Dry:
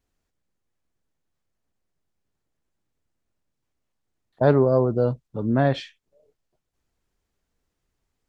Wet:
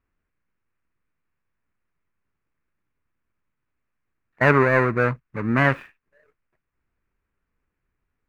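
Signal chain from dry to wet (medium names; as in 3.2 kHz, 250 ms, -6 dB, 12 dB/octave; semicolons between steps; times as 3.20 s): median filter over 41 samples; high-order bell 1.6 kHz +15.5 dB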